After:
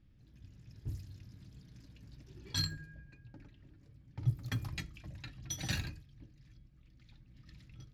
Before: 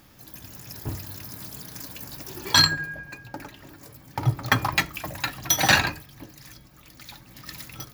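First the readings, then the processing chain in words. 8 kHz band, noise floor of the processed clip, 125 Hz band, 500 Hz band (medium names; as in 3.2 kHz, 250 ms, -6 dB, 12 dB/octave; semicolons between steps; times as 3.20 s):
-18.5 dB, -63 dBFS, -8.5 dB, -22.5 dB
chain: amplifier tone stack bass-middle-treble 10-0-1; level-controlled noise filter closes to 2.7 kHz, open at -35.5 dBFS; trim +3.5 dB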